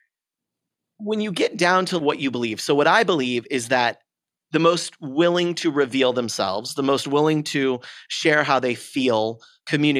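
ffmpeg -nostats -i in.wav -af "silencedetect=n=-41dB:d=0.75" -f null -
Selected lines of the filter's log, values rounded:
silence_start: 0.00
silence_end: 1.00 | silence_duration: 1.00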